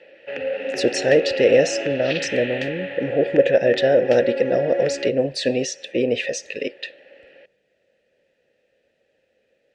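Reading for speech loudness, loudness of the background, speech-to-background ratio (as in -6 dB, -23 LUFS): -20.5 LUFS, -27.0 LUFS, 6.5 dB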